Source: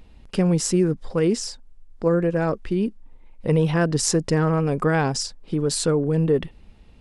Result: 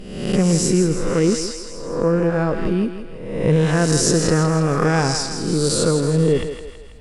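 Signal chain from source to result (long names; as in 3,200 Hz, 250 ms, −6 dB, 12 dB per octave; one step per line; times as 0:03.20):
peak hold with a rise ahead of every peak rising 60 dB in 0.91 s
low-shelf EQ 160 Hz +6 dB
feedback echo with a high-pass in the loop 163 ms, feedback 55%, high-pass 410 Hz, level −7.5 dB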